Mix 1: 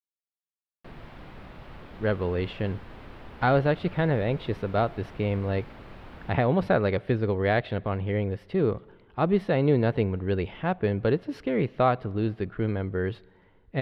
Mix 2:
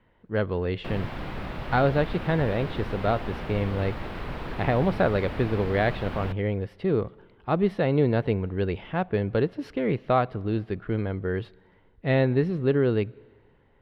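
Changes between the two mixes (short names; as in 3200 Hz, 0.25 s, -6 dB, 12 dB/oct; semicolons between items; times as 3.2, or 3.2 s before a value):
speech: entry -1.70 s; background +10.5 dB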